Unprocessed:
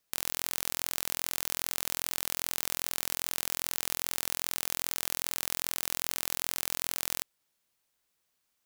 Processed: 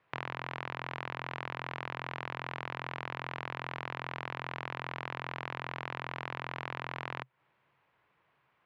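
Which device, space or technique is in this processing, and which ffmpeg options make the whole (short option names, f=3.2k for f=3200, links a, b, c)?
bass amplifier: -af "acompressor=threshold=-37dB:ratio=4,highpass=83,equalizer=f=130:t=q:w=4:g=10,equalizer=f=240:t=q:w=4:g=-7,equalizer=f=1k:t=q:w=4:g=6,lowpass=f=2.4k:w=0.5412,lowpass=f=2.4k:w=1.3066,volume=13dB"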